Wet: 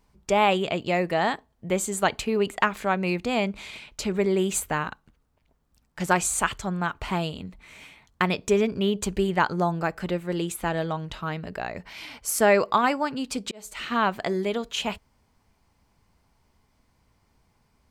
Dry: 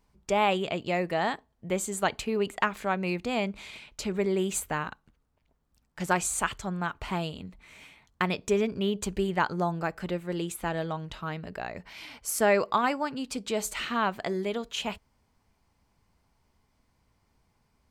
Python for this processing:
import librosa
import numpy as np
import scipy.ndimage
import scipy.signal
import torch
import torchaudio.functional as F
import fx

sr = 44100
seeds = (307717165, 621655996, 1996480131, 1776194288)

y = fx.auto_swell(x, sr, attack_ms=547.0, at=(13.32, 13.92))
y = F.gain(torch.from_numpy(y), 4.0).numpy()